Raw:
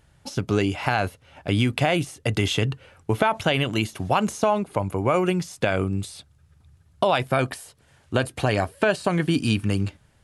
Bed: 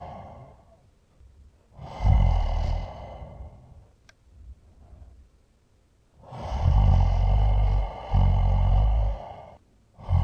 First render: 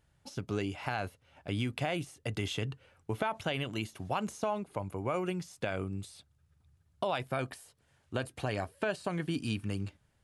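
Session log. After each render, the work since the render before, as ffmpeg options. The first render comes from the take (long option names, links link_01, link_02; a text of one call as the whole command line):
ffmpeg -i in.wav -af "volume=-12dB" out.wav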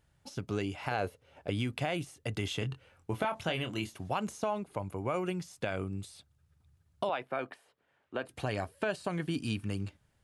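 ffmpeg -i in.wav -filter_complex "[0:a]asettb=1/sr,asplit=3[link_01][link_02][link_03];[link_01]atrim=end=0.914[link_04];[link_02]atrim=start=0.91:end=1.5,asetpts=PTS-STARTPTS,afade=type=in:duration=0.004:curve=qsin,afade=type=out:start_time=0.586:duration=0.004:curve=qsin,equalizer=frequency=460:width_type=o:width=0.77:gain=10[link_05];[link_03]atrim=start=1.496[link_06];[link_04][link_05]acrossfade=duration=0.004:curve1=hsin:curve2=qsin[link_07];[link_07][link_06]acrossfade=duration=0.004:curve1=qsin:curve2=hsin,asettb=1/sr,asplit=3[link_08][link_09][link_10];[link_08]atrim=end=2.594[link_11];[link_09]atrim=start=2.59:end=3.96,asetpts=PTS-STARTPTS,afade=type=in:duration=0.004:curve=qsin,afade=type=out:start_time=1.366:duration=0.004:curve=qsin,asplit=2[link_12][link_13];[link_13]adelay=24,volume=-8dB[link_14];[link_12][link_14]amix=inputs=2:normalize=0,atrim=end_sample=60417[link_15];[link_10]atrim=start=3.956[link_16];[link_11][link_15]acrossfade=duration=0.004:curve1=hsin:curve2=qsin[link_17];[link_17][link_16]acrossfade=duration=0.004:curve1=qsin:curve2=hsin,asettb=1/sr,asplit=3[link_18][link_19][link_20];[link_18]atrim=end=7.094[link_21];[link_19]atrim=start=7.09:end=8.29,asetpts=PTS-STARTPTS,afade=type=in:duration=0.004:curve=qsin,afade=type=out:start_time=1.196:duration=0.004:curve=qsin,acrossover=split=230 3200:gain=0.112 1 0.126[link_22][link_23][link_24];[link_22][link_23][link_24]amix=inputs=3:normalize=0[link_25];[link_20]atrim=start=8.286[link_26];[link_21][link_25]acrossfade=duration=0.004:curve1=hsin:curve2=qsin[link_27];[link_27][link_26]acrossfade=duration=0.004:curve1=qsin:curve2=hsin" out.wav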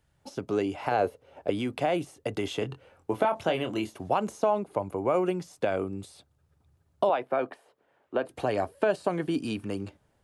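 ffmpeg -i in.wav -filter_complex "[0:a]acrossover=split=260|1000[link_01][link_02][link_03];[link_01]alimiter=level_in=12.5dB:limit=-24dB:level=0:latency=1,volume=-12.5dB[link_04];[link_02]dynaudnorm=framelen=140:gausssize=3:maxgain=10dB[link_05];[link_04][link_05][link_03]amix=inputs=3:normalize=0" out.wav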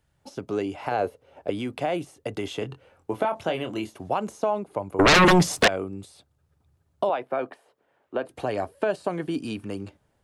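ffmpeg -i in.wav -filter_complex "[0:a]asettb=1/sr,asplit=3[link_01][link_02][link_03];[link_01]atrim=end=4.994[link_04];[link_02]atrim=start=4.99:end=5.68,asetpts=PTS-STARTPTS,afade=type=in:duration=0.004:curve=qsin,afade=type=out:start_time=0.686:duration=0.004:curve=qsin,aeval=exprs='0.251*sin(PI/2*7.94*val(0)/0.251)':channel_layout=same[link_05];[link_03]atrim=start=5.676[link_06];[link_04][link_05]acrossfade=duration=0.004:curve1=hsin:curve2=qsin[link_07];[link_07][link_06]acrossfade=duration=0.004:curve1=qsin:curve2=hsin" out.wav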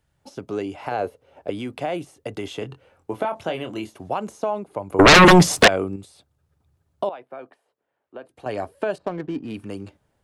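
ffmpeg -i in.wav -filter_complex "[0:a]asettb=1/sr,asplit=3[link_01][link_02][link_03];[link_01]atrim=end=8.984[link_04];[link_02]atrim=start=8.98:end=9.54,asetpts=PTS-STARTPTS,afade=type=in:duration=0.004:curve=qsin,afade=type=out:start_time=0.556:duration=0.004:curve=qsin,adynamicsmooth=sensitivity=4:basefreq=1100[link_05];[link_03]atrim=start=9.536[link_06];[link_04][link_05]acrossfade=duration=0.004:curve1=hsin:curve2=qsin[link_07];[link_07][link_06]acrossfade=duration=0.004:curve1=qsin:curve2=hsin,asplit=5[link_08][link_09][link_10][link_11][link_12];[link_08]atrim=end=4.902[link_13];[link_09]atrim=start=4.898:end=5.962,asetpts=PTS-STARTPTS,volume=6dB[link_14];[link_10]atrim=start=5.958:end=7.092[link_15];[link_11]atrim=start=7.088:end=8.462,asetpts=PTS-STARTPTS,volume=-10dB[link_16];[link_12]atrim=start=8.458[link_17];[link_13][link_14]acrossfade=duration=0.004:curve1=hsin:curve2=hsin[link_18];[link_18][link_15]acrossfade=duration=0.004:curve1=hsin:curve2=hsin[link_19];[link_19][link_16]acrossfade=duration=0.004:curve1=hsin:curve2=hsin[link_20];[link_20][link_17]acrossfade=duration=0.004:curve1=hsin:curve2=hsin" out.wav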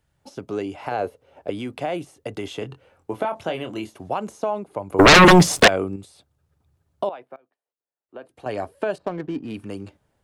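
ffmpeg -i in.wav -filter_complex "[0:a]asplit=3[link_01][link_02][link_03];[link_01]afade=type=out:start_time=4.98:duration=0.02[link_04];[link_02]acrusher=bits=8:dc=4:mix=0:aa=0.000001,afade=type=in:start_time=4.98:duration=0.02,afade=type=out:start_time=5.68:duration=0.02[link_05];[link_03]afade=type=in:start_time=5.68:duration=0.02[link_06];[link_04][link_05][link_06]amix=inputs=3:normalize=0,asplit=3[link_07][link_08][link_09];[link_07]atrim=end=7.36,asetpts=PTS-STARTPTS,afade=type=out:start_time=7.12:duration=0.24:curve=log:silence=0.0794328[link_10];[link_08]atrim=start=7.36:end=8.09,asetpts=PTS-STARTPTS,volume=-22dB[link_11];[link_09]atrim=start=8.09,asetpts=PTS-STARTPTS,afade=type=in:duration=0.24:curve=log:silence=0.0794328[link_12];[link_10][link_11][link_12]concat=n=3:v=0:a=1" out.wav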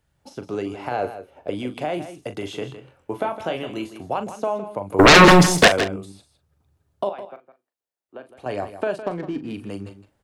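ffmpeg -i in.wav -filter_complex "[0:a]asplit=2[link_01][link_02];[link_02]adelay=40,volume=-11dB[link_03];[link_01][link_03]amix=inputs=2:normalize=0,asplit=2[link_04][link_05];[link_05]aecho=0:1:160:0.251[link_06];[link_04][link_06]amix=inputs=2:normalize=0" out.wav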